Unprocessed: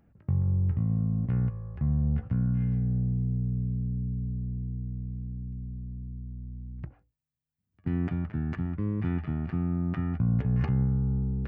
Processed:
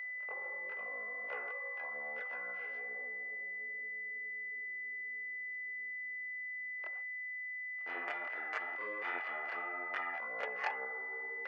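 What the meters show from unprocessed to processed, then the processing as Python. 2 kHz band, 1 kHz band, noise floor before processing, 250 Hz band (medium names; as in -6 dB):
+16.5 dB, +5.5 dB, -82 dBFS, -31.0 dB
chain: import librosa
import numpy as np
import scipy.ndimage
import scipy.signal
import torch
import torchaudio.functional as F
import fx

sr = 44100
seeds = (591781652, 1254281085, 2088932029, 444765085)

y = fx.chorus_voices(x, sr, voices=2, hz=1.2, base_ms=25, depth_ms=3.4, mix_pct=60)
y = y + 10.0 ** (-48.0 / 20.0) * np.sin(2.0 * np.pi * 2000.0 * np.arange(len(y)) / sr)
y = scipy.signal.sosfilt(scipy.signal.ellip(4, 1.0, 80, 510.0, 'highpass', fs=sr, output='sos'), y)
y = y * librosa.db_to_amplitude(8.5)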